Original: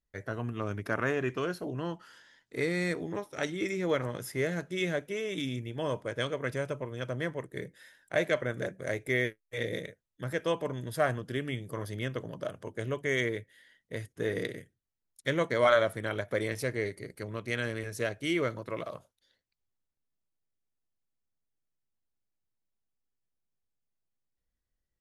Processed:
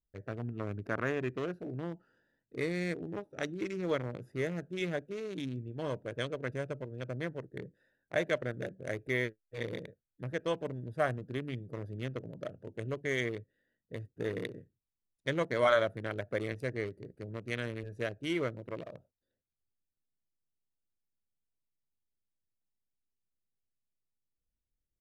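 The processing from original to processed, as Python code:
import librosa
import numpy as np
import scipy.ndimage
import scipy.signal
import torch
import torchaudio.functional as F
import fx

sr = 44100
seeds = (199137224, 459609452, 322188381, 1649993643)

y = fx.wiener(x, sr, points=41)
y = F.gain(torch.from_numpy(y), -2.5).numpy()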